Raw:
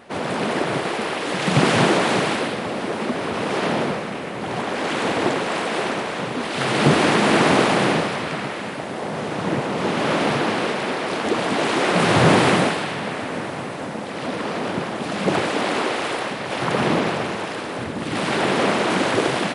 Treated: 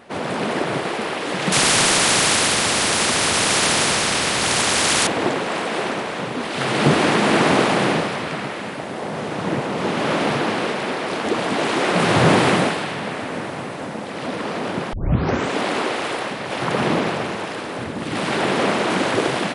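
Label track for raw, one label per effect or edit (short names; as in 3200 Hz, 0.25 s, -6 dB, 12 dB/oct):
1.520000	5.070000	spectral compressor 4:1
14.930000	14.930000	tape start 0.64 s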